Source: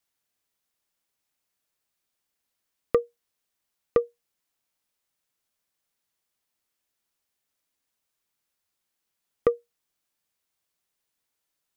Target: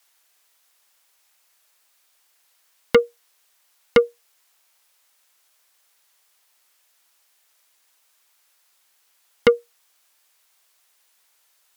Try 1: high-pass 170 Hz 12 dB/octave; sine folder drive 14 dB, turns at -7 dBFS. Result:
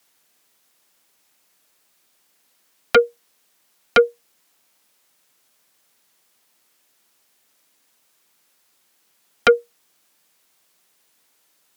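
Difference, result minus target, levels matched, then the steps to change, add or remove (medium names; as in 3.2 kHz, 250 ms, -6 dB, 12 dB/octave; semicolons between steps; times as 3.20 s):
125 Hz band -7.5 dB
change: high-pass 660 Hz 12 dB/octave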